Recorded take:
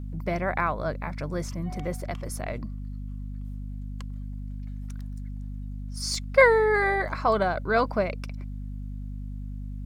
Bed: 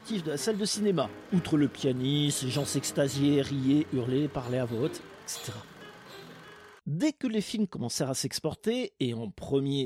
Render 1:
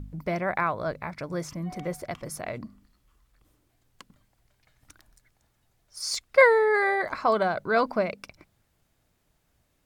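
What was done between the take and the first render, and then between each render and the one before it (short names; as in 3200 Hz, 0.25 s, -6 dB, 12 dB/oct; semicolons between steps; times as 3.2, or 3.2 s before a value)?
de-hum 50 Hz, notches 5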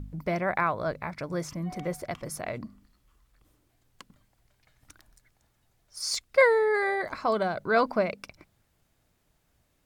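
6.22–7.61 bell 1200 Hz -4.5 dB 2.6 oct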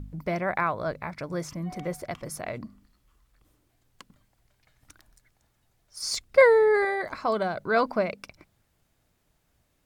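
6.02–6.85 low shelf 500 Hz +8 dB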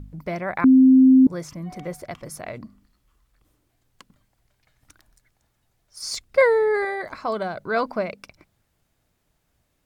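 0.64–1.27 bleep 261 Hz -9 dBFS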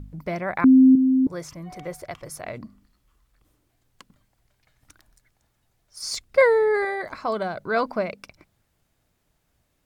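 0.95–2.44 bell 220 Hz -9 dB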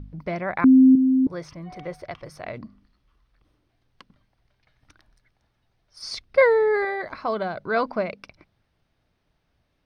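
polynomial smoothing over 15 samples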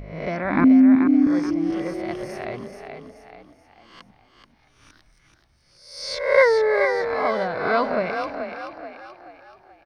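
spectral swells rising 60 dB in 0.67 s; frequency-shifting echo 0.431 s, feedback 45%, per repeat +34 Hz, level -7 dB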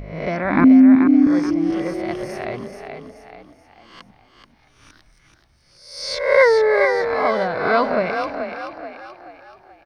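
gain +3.5 dB; limiter -3 dBFS, peak gain reduction 3 dB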